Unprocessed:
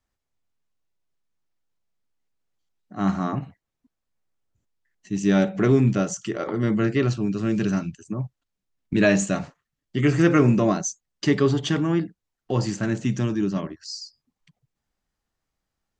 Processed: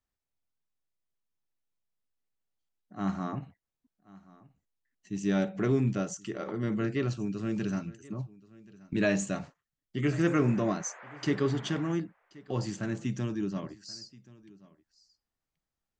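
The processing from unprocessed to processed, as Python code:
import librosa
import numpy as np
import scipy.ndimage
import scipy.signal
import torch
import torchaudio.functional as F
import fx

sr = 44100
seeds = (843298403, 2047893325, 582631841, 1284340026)

y = fx.dmg_noise_band(x, sr, seeds[0], low_hz=470.0, high_hz=2000.0, level_db=-41.0, at=(10.24, 11.91), fade=0.02)
y = y + 10.0 ** (-22.0 / 20.0) * np.pad(y, (int(1079 * sr / 1000.0), 0))[:len(y)]
y = y * 10.0 ** (-8.5 / 20.0)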